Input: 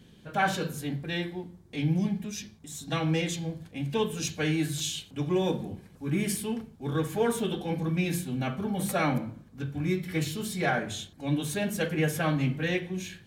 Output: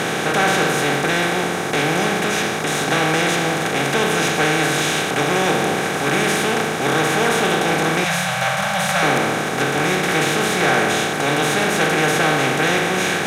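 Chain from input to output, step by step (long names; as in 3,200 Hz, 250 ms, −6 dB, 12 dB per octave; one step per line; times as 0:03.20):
compressor on every frequency bin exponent 0.2
mid-hump overdrive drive 10 dB, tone 4,900 Hz, clips at −4.5 dBFS
0:08.04–0:09.03: elliptic band-stop filter 190–560 Hz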